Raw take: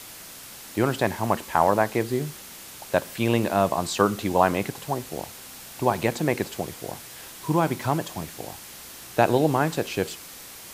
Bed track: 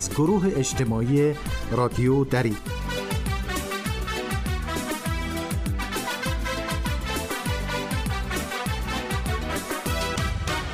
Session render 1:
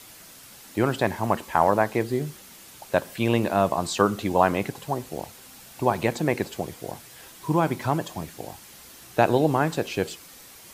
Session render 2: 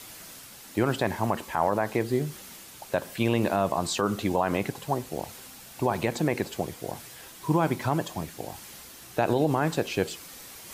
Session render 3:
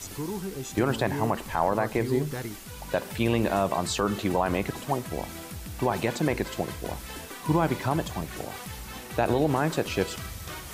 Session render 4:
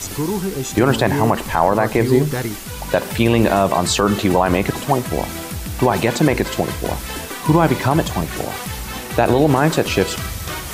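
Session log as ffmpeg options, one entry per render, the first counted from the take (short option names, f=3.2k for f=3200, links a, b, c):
-af "afftdn=nr=6:nf=-43"
-af "alimiter=limit=-12.5dB:level=0:latency=1:release=63,areverse,acompressor=mode=upward:threshold=-39dB:ratio=2.5,areverse"
-filter_complex "[1:a]volume=-12.5dB[a];[0:a][a]amix=inputs=2:normalize=0"
-af "volume=11.5dB,alimiter=limit=-3dB:level=0:latency=1"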